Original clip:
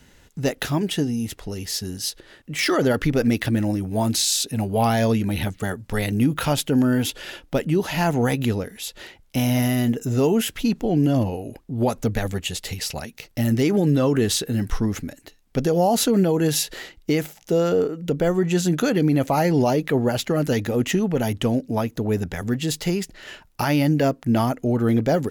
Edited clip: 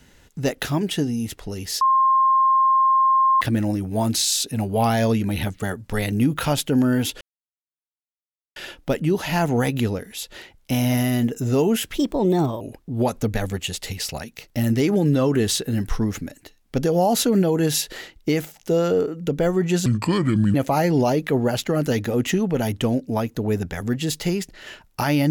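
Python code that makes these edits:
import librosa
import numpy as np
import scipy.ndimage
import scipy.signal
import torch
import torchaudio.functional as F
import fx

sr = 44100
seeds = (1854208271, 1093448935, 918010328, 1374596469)

y = fx.edit(x, sr, fx.bleep(start_s=1.81, length_s=1.6, hz=1060.0, db=-13.5),
    fx.insert_silence(at_s=7.21, length_s=1.35),
    fx.speed_span(start_s=10.63, length_s=0.79, speed=1.26),
    fx.speed_span(start_s=18.67, length_s=0.48, speed=0.7), tone=tone)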